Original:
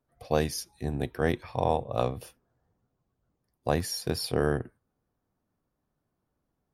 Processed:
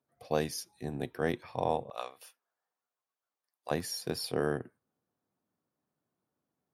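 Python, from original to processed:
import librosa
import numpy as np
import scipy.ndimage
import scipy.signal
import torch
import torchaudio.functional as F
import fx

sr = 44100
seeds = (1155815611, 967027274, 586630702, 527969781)

y = fx.highpass(x, sr, hz=fx.steps((0.0, 140.0), (1.9, 1000.0), (3.71, 150.0)), slope=12)
y = F.gain(torch.from_numpy(y), -4.0).numpy()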